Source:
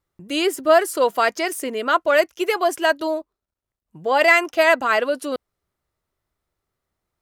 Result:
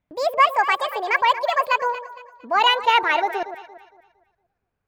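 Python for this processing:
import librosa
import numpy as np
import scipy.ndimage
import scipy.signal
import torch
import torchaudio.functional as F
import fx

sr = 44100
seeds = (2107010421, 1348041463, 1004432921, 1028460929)

y = fx.speed_glide(x, sr, from_pct=176, to_pct=120)
y = fx.bass_treble(y, sr, bass_db=2, treble_db=-15)
y = fx.echo_alternate(y, sr, ms=115, hz=870.0, feedback_pct=58, wet_db=-9.5)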